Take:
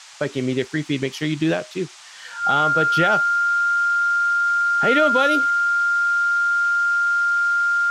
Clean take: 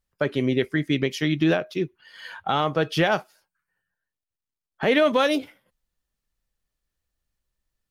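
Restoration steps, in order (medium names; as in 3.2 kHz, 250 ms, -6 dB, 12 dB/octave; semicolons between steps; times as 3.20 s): band-stop 1.4 kHz, Q 30; noise print and reduce 30 dB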